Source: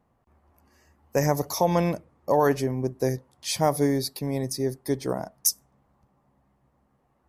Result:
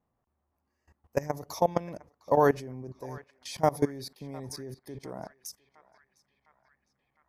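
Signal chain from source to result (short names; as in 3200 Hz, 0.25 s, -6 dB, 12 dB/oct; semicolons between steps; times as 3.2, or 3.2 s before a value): high shelf 5900 Hz -8 dB; level quantiser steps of 20 dB; narrowing echo 0.707 s, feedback 69%, band-pass 1800 Hz, level -18 dB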